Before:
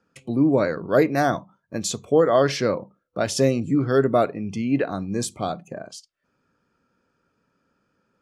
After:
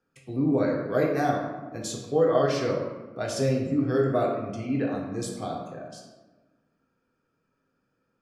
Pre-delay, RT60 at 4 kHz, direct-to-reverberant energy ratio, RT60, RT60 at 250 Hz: 3 ms, 0.70 s, −1.5 dB, 1.3 s, 1.7 s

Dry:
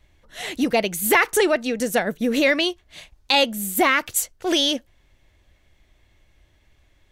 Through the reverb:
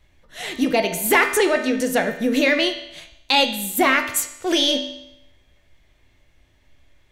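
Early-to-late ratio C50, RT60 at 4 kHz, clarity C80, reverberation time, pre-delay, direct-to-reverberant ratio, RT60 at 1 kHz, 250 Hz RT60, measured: 8.0 dB, 0.80 s, 10.5 dB, 0.85 s, 6 ms, 4.0 dB, 0.85 s, 0.85 s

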